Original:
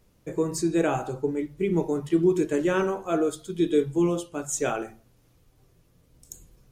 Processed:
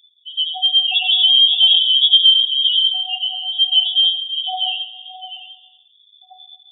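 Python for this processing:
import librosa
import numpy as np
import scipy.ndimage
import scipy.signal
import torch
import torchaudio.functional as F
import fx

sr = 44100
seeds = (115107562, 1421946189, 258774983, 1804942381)

p1 = np.r_[np.sort(x[:len(x) // 16 * 16].reshape(-1, 16), axis=1).ravel(), x[len(x) // 16 * 16:]]
p2 = fx.highpass(p1, sr, hz=610.0, slope=12, at=(2.94, 3.44))
p3 = fx.level_steps(p2, sr, step_db=9)
p4 = p2 + (p3 * librosa.db_to_amplitude(-2.0))
p5 = fx.power_curve(p4, sr, exponent=0.35, at=(0.92, 2.08))
p6 = fx.spec_topn(p5, sr, count=2)
p7 = fx.echo_multitap(p6, sr, ms=(90, 611, 701), db=(-12.0, -14.0, -12.5))
p8 = fx.rev_gated(p7, sr, seeds[0], gate_ms=480, shape='falling', drr_db=11.5)
p9 = fx.freq_invert(p8, sr, carrier_hz=3500)
y = p9 * librosa.db_to_amplitude(6.5)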